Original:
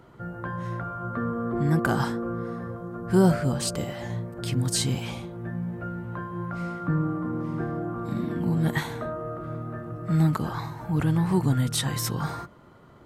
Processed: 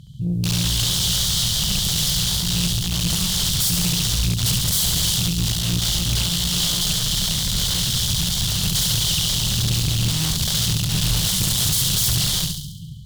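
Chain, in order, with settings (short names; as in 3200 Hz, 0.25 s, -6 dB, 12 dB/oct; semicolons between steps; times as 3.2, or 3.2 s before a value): 11.12–11.77 high shelf 2000 Hz +9.5 dB; in parallel at +1 dB: compressor 6:1, threshold -30 dBFS, peak gain reduction 15.5 dB; on the sum: limiter -17 dBFS, peak gain reduction 11.5 dB; AGC gain up to 8 dB; wrapped overs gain 17 dB; brick-wall FIR band-stop 200–3000 Hz; on a send: flutter echo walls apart 11.8 m, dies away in 0.79 s; on the sum: tube stage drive 21 dB, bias 0.3; Doppler distortion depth 0.39 ms; gain +8 dB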